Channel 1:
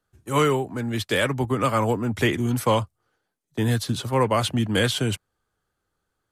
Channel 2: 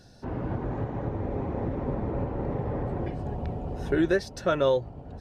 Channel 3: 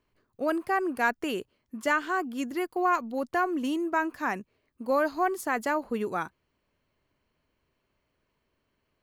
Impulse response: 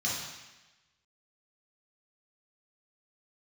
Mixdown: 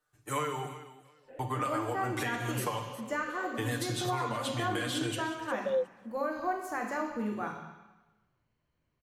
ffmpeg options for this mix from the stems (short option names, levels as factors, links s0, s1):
-filter_complex "[0:a]lowshelf=f=410:g=-11.5,aecho=1:1:6.7:0.82,acompressor=threshold=0.0447:ratio=6,volume=0.75,asplit=3[s0][s1][s2];[s0]atrim=end=0.67,asetpts=PTS-STARTPTS,afade=t=out:st=0.666:d=0.004:c=hsin[s3];[s1]atrim=start=0.67:end=1.39,asetpts=PTS-STARTPTS,volume=0[s4];[s2]atrim=start=1.39,asetpts=PTS-STARTPTS,afade=t=in:d=0.004:c=hsin[s5];[s3][s4][s5]concat=n=3:v=0:a=1,asplit=4[s6][s7][s8][s9];[s7]volume=0.237[s10];[s8]volume=0.133[s11];[1:a]asplit=3[s12][s13][s14];[s12]bandpass=f=530:t=q:w=8,volume=1[s15];[s13]bandpass=f=1840:t=q:w=8,volume=0.501[s16];[s14]bandpass=f=2480:t=q:w=8,volume=0.355[s17];[s15][s16][s17]amix=inputs=3:normalize=0,aemphasis=mode=production:type=riaa,aphaser=in_gain=1:out_gain=1:delay=4:decay=0.47:speed=1.9:type=sinusoidal,adelay=1050,volume=0.891[s18];[2:a]lowshelf=f=180:g=8,adelay=1250,volume=0.355,asplit=2[s19][s20];[s20]volume=0.447[s21];[s9]apad=whole_len=275678[s22];[s18][s22]sidechaincompress=threshold=0.0158:ratio=8:attack=16:release=1380[s23];[3:a]atrim=start_sample=2205[s24];[s10][s21]amix=inputs=2:normalize=0[s25];[s25][s24]afir=irnorm=-1:irlink=0[s26];[s11]aecho=0:1:359|718|1077:1|0.2|0.04[s27];[s6][s23][s19][s26][s27]amix=inputs=5:normalize=0,alimiter=limit=0.0794:level=0:latency=1:release=219"